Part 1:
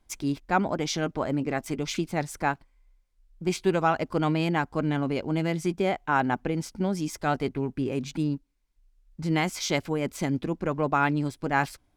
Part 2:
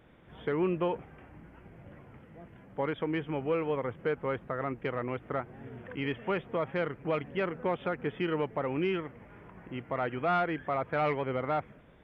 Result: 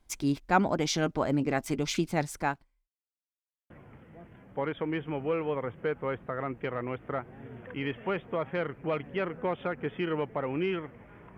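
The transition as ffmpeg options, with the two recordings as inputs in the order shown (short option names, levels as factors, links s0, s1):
-filter_complex "[0:a]apad=whole_dur=11.37,atrim=end=11.37,asplit=2[s0][s1];[s0]atrim=end=2.88,asetpts=PTS-STARTPTS,afade=t=out:st=2:d=0.88:c=qsin[s2];[s1]atrim=start=2.88:end=3.7,asetpts=PTS-STARTPTS,volume=0[s3];[1:a]atrim=start=1.91:end=9.58,asetpts=PTS-STARTPTS,afade=t=in:d=0.004:c=hsin[s4];[s2][s3][s4]concat=n=3:v=0:a=1"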